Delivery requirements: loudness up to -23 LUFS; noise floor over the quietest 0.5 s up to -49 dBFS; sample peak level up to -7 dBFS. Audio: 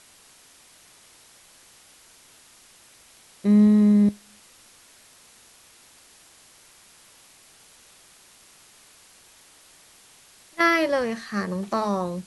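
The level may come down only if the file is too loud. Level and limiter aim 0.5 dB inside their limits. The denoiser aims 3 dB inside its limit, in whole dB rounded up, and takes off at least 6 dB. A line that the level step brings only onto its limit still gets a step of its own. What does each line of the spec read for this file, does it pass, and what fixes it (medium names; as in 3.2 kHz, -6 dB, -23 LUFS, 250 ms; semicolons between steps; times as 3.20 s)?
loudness -21.0 LUFS: fail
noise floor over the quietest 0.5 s -54 dBFS: pass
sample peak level -7.5 dBFS: pass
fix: trim -2.5 dB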